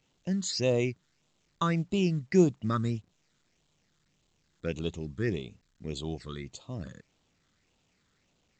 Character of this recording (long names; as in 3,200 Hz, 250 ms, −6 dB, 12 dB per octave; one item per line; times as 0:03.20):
phaser sweep stages 8, 1.7 Hz, lowest notch 730–1,800 Hz
A-law companding